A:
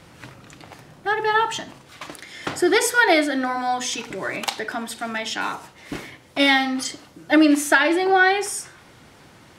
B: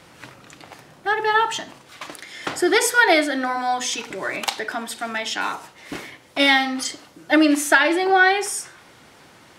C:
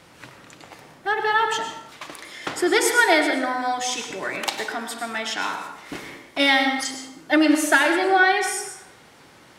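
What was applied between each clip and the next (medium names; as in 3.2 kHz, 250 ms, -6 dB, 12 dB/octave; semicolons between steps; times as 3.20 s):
bass shelf 200 Hz -9 dB; trim +1.5 dB
plate-style reverb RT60 0.79 s, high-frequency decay 0.65×, pre-delay 90 ms, DRR 6 dB; trim -2 dB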